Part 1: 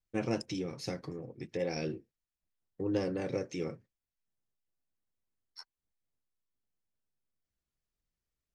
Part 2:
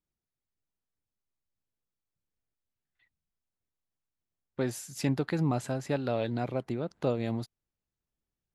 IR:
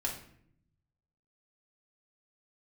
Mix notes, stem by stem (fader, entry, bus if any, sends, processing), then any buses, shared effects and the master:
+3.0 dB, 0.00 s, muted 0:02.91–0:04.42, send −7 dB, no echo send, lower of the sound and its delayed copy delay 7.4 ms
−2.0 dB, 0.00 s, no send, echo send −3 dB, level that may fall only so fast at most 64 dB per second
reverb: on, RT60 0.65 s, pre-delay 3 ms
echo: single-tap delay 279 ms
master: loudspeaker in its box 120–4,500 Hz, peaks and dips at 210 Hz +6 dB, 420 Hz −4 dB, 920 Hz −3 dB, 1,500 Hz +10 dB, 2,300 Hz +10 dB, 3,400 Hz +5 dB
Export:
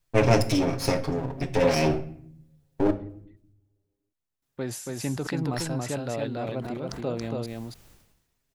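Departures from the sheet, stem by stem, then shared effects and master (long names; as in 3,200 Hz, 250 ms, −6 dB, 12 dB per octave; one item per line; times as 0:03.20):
stem 1 +3.0 dB → +10.5 dB
master: missing loudspeaker in its box 120–4,500 Hz, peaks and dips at 210 Hz +6 dB, 420 Hz −4 dB, 920 Hz −3 dB, 1,500 Hz +10 dB, 2,300 Hz +10 dB, 3,400 Hz +5 dB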